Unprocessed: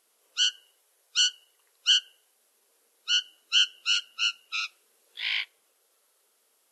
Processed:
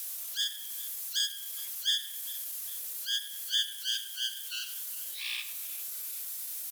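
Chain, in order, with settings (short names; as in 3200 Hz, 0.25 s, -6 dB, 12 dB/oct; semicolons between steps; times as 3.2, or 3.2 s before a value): switching spikes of -26 dBFS; on a send: feedback echo 0.405 s, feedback 50%, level -18.5 dB; on the sum: pitch shift +2 st; tape echo 98 ms, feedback 81%, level -5 dB, low-pass 1000 Hz; gain -7.5 dB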